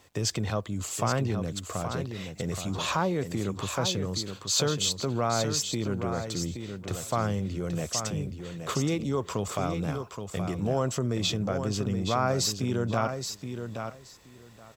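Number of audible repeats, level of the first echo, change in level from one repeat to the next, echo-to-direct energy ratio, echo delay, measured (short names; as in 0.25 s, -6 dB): 2, -7.5 dB, -16.0 dB, -7.5 dB, 0.823 s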